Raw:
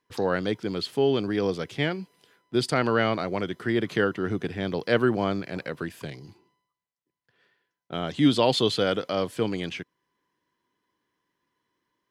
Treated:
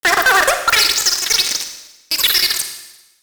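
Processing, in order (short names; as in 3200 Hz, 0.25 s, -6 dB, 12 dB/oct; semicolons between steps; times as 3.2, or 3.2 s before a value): tone controls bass -7 dB, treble -12 dB; in parallel at -1 dB: compressor, threshold -33 dBFS, peak gain reduction 15.5 dB; on the sum: high-pass sweep 140 Hz -> 1100 Hz, 2.28–3.09; fuzz box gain 27 dB, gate -35 dBFS; wide varispeed 3.75×; Schroeder reverb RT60 1 s, DRR 6.5 dB; gain +4.5 dB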